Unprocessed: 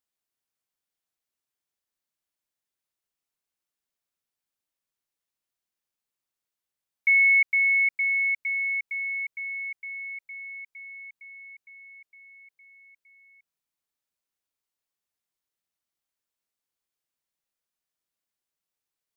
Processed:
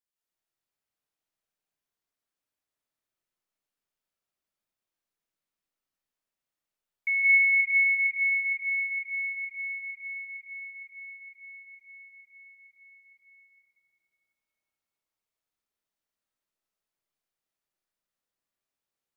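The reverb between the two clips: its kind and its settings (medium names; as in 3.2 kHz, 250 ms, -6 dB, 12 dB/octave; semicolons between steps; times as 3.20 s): algorithmic reverb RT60 3.9 s, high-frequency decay 0.35×, pre-delay 115 ms, DRR -7.5 dB; trim -7.5 dB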